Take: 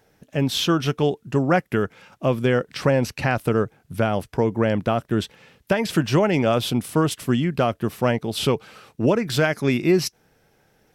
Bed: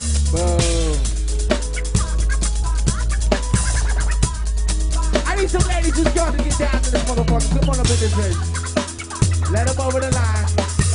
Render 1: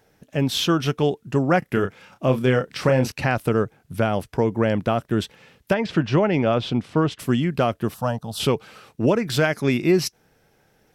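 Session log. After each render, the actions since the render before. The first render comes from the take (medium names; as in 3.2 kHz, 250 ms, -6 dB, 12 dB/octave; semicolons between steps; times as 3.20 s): 1.59–3.12 s: doubling 31 ms -7.5 dB; 5.74–7.19 s: distance through air 160 m; 7.94–8.40 s: static phaser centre 900 Hz, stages 4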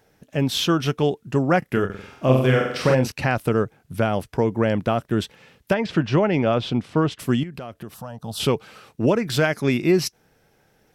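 1.85–2.95 s: flutter echo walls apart 7.9 m, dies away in 0.76 s; 7.43–8.20 s: compression 5:1, threshold -32 dBFS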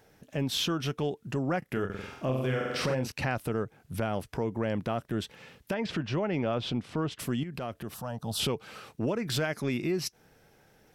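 compression 10:1, threshold -25 dBFS, peak gain reduction 14 dB; transient shaper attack -5 dB, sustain 0 dB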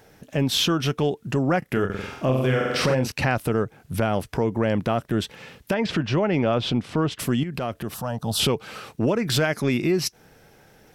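trim +8 dB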